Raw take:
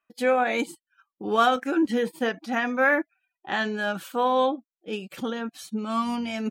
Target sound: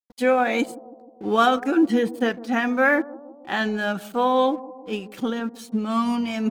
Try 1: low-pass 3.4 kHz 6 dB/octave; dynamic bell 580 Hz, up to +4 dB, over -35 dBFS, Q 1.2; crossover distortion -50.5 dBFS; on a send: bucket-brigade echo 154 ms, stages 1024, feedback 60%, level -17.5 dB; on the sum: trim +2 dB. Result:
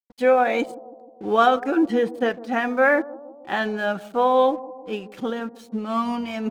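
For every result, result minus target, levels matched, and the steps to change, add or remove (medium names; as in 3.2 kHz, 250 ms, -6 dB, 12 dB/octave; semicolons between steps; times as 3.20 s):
250 Hz band -3.5 dB; 4 kHz band -3.0 dB
change: dynamic bell 240 Hz, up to +4 dB, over -35 dBFS, Q 1.2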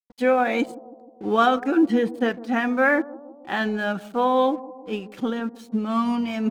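4 kHz band -2.5 dB
remove: low-pass 3.4 kHz 6 dB/octave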